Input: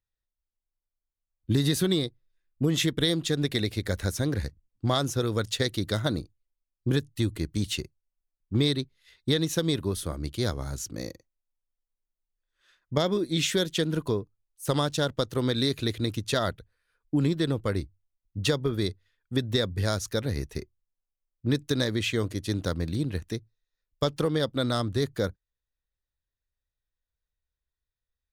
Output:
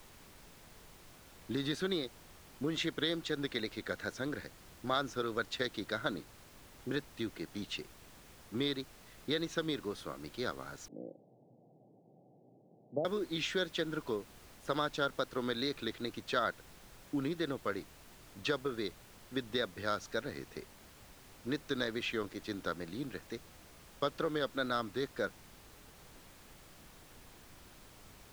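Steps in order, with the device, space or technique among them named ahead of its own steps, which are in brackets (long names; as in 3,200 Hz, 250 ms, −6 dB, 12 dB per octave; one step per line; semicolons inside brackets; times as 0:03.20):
horn gramophone (band-pass filter 250–4,400 Hz; parametric band 1,400 Hz +8 dB 0.5 octaves; tape wow and flutter; pink noise bed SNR 17 dB)
0:10.88–0:13.05: Chebyshev band-pass filter 120–780 Hz, order 5
level −7.5 dB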